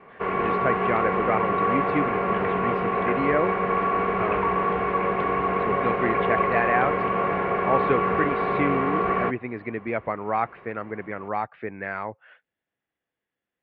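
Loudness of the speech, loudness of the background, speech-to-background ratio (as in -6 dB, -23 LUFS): -29.0 LUFS, -24.0 LUFS, -5.0 dB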